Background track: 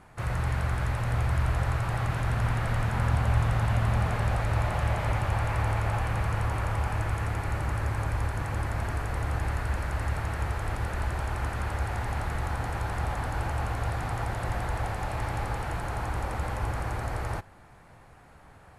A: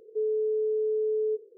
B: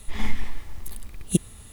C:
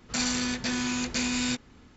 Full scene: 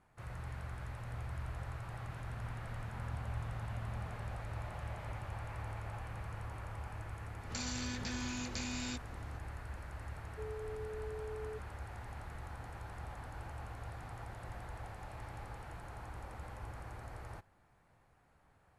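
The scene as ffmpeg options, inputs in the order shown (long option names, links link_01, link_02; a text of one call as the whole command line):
ffmpeg -i bed.wav -i cue0.wav -i cue1.wav -i cue2.wav -filter_complex "[0:a]volume=-16dB[link_01];[3:a]acompressor=threshold=-34dB:ratio=6:attack=3.2:release=140:knee=1:detection=peak,atrim=end=1.96,asetpts=PTS-STARTPTS,volume=-3.5dB,afade=type=in:duration=0.004:curve=hsin,afade=type=out:start_time=1.956:duration=0.004:curve=hsin,adelay=7410[link_02];[1:a]atrim=end=1.57,asetpts=PTS-STARTPTS,volume=-17.5dB,afade=type=in:duration=0.004:curve=hsin,afade=type=out:start_time=1.566:duration=0.004:curve=hsin,adelay=10220[link_03];[link_01][link_02][link_03]amix=inputs=3:normalize=0" out.wav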